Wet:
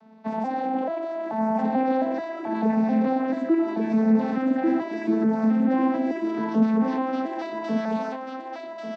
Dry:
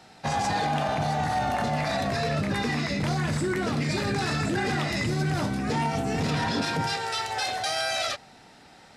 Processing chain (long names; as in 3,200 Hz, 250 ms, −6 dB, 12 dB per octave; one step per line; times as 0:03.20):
vocoder with an arpeggio as carrier minor triad, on A3, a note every 436 ms
low-pass filter 1,000 Hz 6 dB per octave
repeating echo 1,141 ms, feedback 24%, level −3 dB
level +2.5 dB